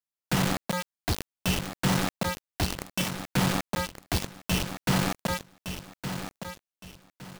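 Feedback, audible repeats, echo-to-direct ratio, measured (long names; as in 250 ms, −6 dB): 29%, 3, −8.5 dB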